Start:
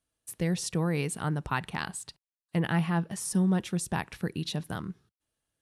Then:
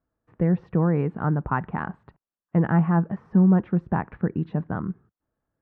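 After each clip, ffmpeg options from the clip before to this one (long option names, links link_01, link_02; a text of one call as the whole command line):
ffmpeg -i in.wav -af "lowpass=frequency=1500:width=0.5412,lowpass=frequency=1500:width=1.3066,equalizer=frequency=220:width_type=o:width=0.77:gain=3,volume=6dB" out.wav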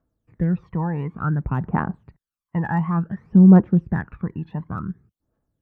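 ffmpeg -i in.wav -af "aphaser=in_gain=1:out_gain=1:delay=1.2:decay=0.73:speed=0.56:type=triangular,volume=-3dB" out.wav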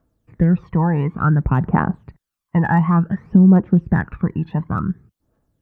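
ffmpeg -i in.wav -af "acompressor=threshold=-18dB:ratio=3,volume=7.5dB" out.wav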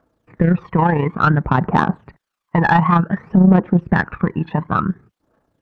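ffmpeg -i in.wav -filter_complex "[0:a]asplit=2[link_01][link_02];[link_02]highpass=frequency=720:poles=1,volume=18dB,asoftclip=type=tanh:threshold=-2dB[link_03];[link_01][link_03]amix=inputs=2:normalize=0,lowpass=frequency=1800:poles=1,volume=-6dB,tremolo=f=29:d=0.519,volume=2dB" out.wav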